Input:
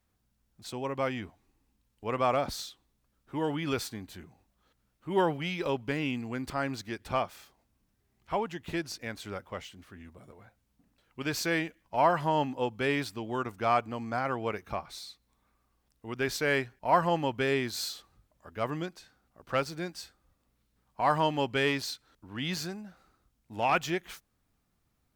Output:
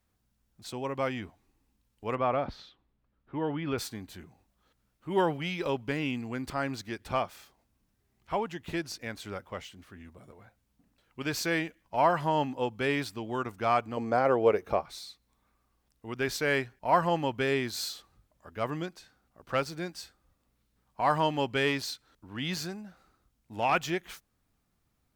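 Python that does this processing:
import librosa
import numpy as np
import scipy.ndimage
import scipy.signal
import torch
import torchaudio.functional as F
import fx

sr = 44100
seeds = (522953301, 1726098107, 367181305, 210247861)

y = fx.air_absorb(x, sr, metres=320.0, at=(2.15, 3.78))
y = fx.peak_eq(y, sr, hz=480.0, db=12.5, octaves=1.2, at=(13.97, 14.82))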